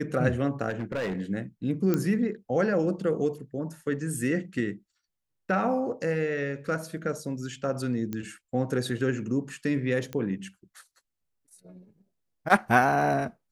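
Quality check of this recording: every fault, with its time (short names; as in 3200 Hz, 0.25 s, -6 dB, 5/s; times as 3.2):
0.69–1.21 clipped -26.5 dBFS
1.94 pop -13 dBFS
8.13 pop -19 dBFS
10.13 pop -20 dBFS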